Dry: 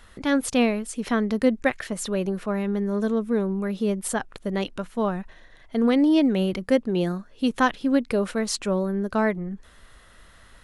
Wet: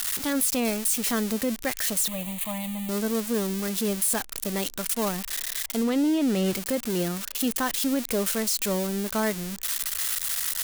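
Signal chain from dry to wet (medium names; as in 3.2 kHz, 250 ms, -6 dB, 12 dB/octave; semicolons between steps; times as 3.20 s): zero-crossing glitches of -14.5 dBFS; 5.83–6.53 s: treble shelf 8.1 kHz -8.5 dB; peak limiter -17.5 dBFS, peak gain reduction 9 dB; 2.08–2.89 s: static phaser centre 1.5 kHz, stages 6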